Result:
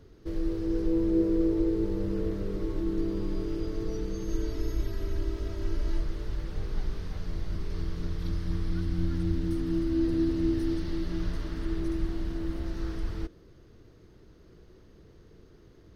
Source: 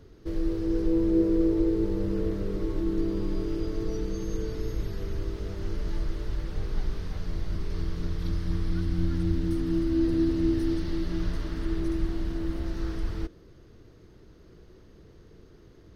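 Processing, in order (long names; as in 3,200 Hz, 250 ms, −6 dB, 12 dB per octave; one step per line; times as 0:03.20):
0:04.28–0:06.01: comb filter 3.1 ms, depth 65%
level −2 dB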